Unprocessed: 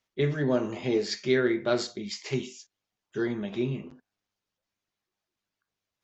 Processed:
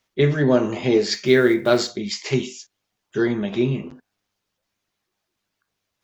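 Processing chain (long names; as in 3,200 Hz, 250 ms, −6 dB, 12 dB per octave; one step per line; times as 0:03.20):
0:01.12–0:01.91: one scale factor per block 7 bits
level +8.5 dB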